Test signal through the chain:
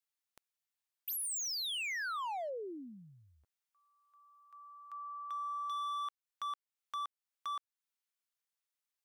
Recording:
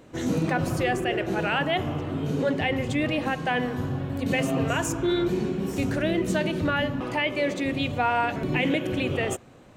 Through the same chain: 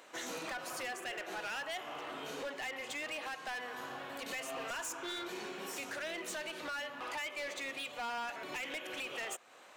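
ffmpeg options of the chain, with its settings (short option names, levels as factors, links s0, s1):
-af "highpass=880,acompressor=threshold=0.00631:ratio=2,asoftclip=type=hard:threshold=0.0112,volume=1.33"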